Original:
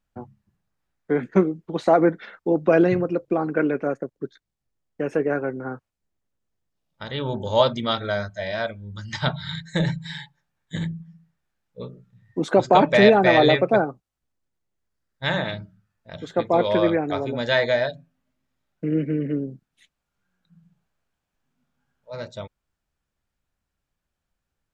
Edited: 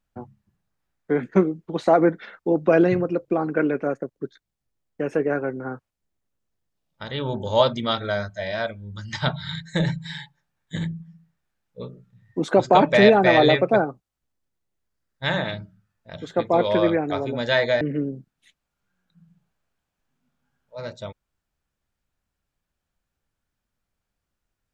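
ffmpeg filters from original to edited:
ffmpeg -i in.wav -filter_complex "[0:a]asplit=2[link_01][link_02];[link_01]atrim=end=17.812[link_03];[link_02]atrim=start=19.158[link_04];[link_03][link_04]acrossfade=duration=0.004:curve1=hsin:curve2=hsin" out.wav

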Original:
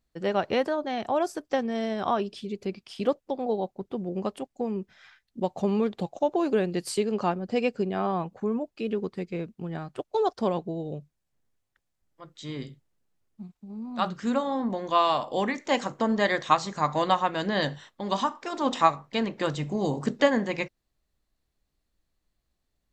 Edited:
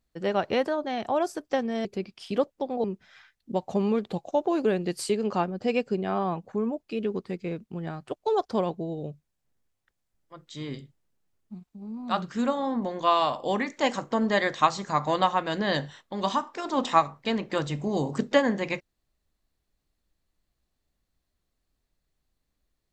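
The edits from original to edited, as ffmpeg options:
ffmpeg -i in.wav -filter_complex "[0:a]asplit=3[link_01][link_02][link_03];[link_01]atrim=end=1.852[link_04];[link_02]atrim=start=2.538:end=3.532[link_05];[link_03]atrim=start=4.718[link_06];[link_04][link_05]acrossfade=duration=0.004:curve1=hsin:curve2=hsin[link_07];[link_07][link_06]acrossfade=duration=0.004:curve1=hsin:curve2=hsin" out.wav

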